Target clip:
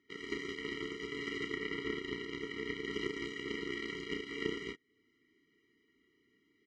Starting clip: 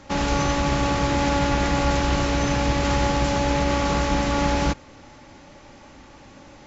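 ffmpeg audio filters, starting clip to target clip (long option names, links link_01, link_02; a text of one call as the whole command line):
ffmpeg -i in.wav -filter_complex "[0:a]asettb=1/sr,asplit=3[link_01][link_02][link_03];[link_01]atrim=end=1.544[link_04];[link_02]atrim=start=1.54:end=2.94,asetpts=PTS-STARTPTS,afade=type=in:duration=0.004:curve=qsin,afade=type=out:start_time=1.396:duration=0.004:curve=qsin,highshelf=frequency=6700:gain=-9[link_05];[link_03]atrim=start=2.936[link_06];[link_04][link_05]acrossfade=duration=0.004:curve1=hsin:curve2=qsin[link_07];[link_07][link_06]acrossfade=duration=0.004:curve1=qsin:curve2=hsin,asplit=2[link_08][link_09];[link_09]acompressor=threshold=-36dB:ratio=6,volume=1.5dB[link_10];[link_08][link_10]amix=inputs=2:normalize=0,aeval=exprs='0.447*(cos(1*acos(clip(val(0)/0.447,-1,1)))-cos(1*PI/2))+0.158*(cos(3*acos(clip(val(0)/0.447,-1,1)))-cos(3*PI/2))':channel_layout=same,asplit=3[link_11][link_12][link_13];[link_11]bandpass=frequency=530:width_type=q:width=8,volume=0dB[link_14];[link_12]bandpass=frequency=1840:width_type=q:width=8,volume=-6dB[link_15];[link_13]bandpass=frequency=2480:width_type=q:width=8,volume=-9dB[link_16];[link_14][link_15][link_16]amix=inputs=3:normalize=0,asplit=2[link_17][link_18];[link_18]adelay=32,volume=-6.5dB[link_19];[link_17][link_19]amix=inputs=2:normalize=0,afftfilt=real='re*eq(mod(floor(b*sr/1024/470),2),0)':imag='im*eq(mod(floor(b*sr/1024/470),2),0)':win_size=1024:overlap=0.75,volume=11.5dB" out.wav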